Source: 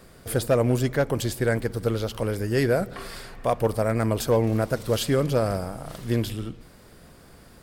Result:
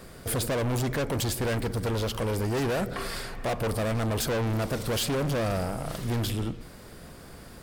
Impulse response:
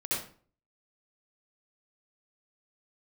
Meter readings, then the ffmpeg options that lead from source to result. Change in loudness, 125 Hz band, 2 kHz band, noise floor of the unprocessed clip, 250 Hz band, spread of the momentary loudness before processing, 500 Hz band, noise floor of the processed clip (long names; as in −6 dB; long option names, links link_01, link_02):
−4.0 dB, −3.0 dB, −2.0 dB, −50 dBFS, −4.0 dB, 11 LU, −6.0 dB, −46 dBFS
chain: -af "asoftclip=type=hard:threshold=-29.5dB,volume=4dB"